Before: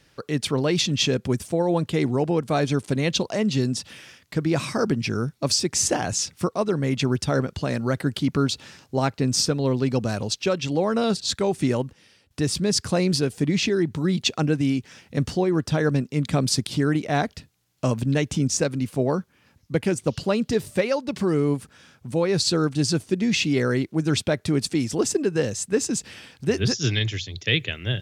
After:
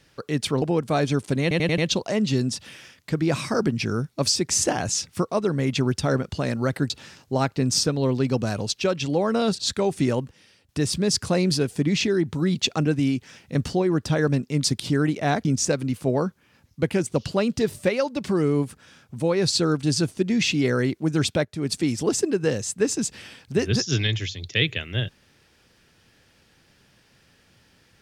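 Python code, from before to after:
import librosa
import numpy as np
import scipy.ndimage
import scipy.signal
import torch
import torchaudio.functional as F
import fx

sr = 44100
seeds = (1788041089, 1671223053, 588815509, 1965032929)

y = fx.edit(x, sr, fx.cut(start_s=0.62, length_s=1.6),
    fx.stutter(start_s=3.02, slice_s=0.09, count=5),
    fx.cut(start_s=8.14, length_s=0.38),
    fx.cut(start_s=16.26, length_s=0.25),
    fx.cut(start_s=17.32, length_s=1.05),
    fx.fade_in_from(start_s=24.37, length_s=0.27, curve='qua', floor_db=-12.5), tone=tone)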